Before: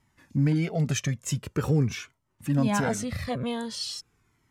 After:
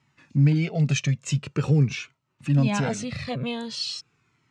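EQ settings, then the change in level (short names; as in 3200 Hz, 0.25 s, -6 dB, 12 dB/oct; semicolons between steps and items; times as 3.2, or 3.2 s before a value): dynamic EQ 1300 Hz, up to -6 dB, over -48 dBFS, Q 1.7; speaker cabinet 110–7700 Hz, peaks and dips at 140 Hz +8 dB, 1300 Hz +5 dB, 2600 Hz +9 dB, 4100 Hz +5 dB; 0.0 dB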